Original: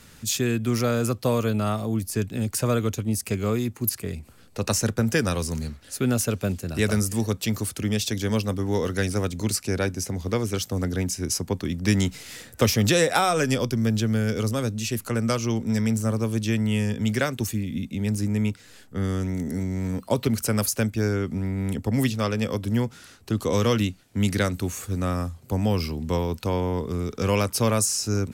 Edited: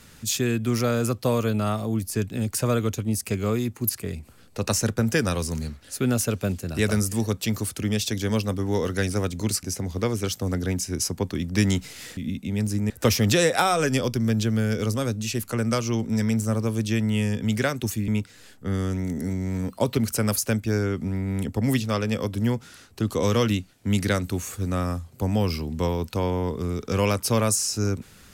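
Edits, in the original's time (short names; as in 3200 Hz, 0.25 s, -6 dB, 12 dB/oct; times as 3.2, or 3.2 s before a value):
9.63–9.93 cut
17.65–18.38 move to 12.47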